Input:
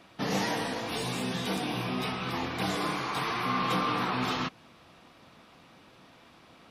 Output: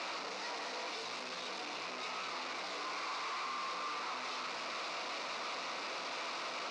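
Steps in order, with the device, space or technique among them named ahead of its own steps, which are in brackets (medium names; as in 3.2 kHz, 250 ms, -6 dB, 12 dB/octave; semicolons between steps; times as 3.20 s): home computer beeper (one-bit comparator; cabinet simulation 650–5100 Hz, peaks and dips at 810 Hz -5 dB, 1.7 kHz -8 dB, 3.2 kHz -9 dB); trim -2.5 dB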